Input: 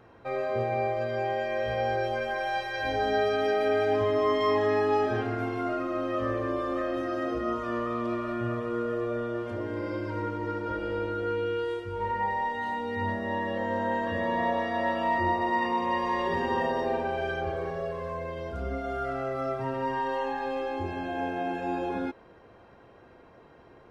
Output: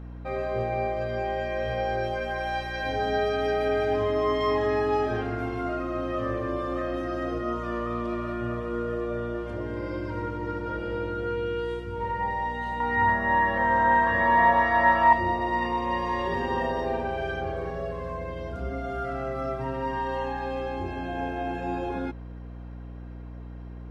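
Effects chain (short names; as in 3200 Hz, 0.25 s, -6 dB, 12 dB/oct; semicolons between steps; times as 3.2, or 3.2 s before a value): 12.8–15.13 band shelf 1300 Hz +11 dB; hum 60 Hz, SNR 12 dB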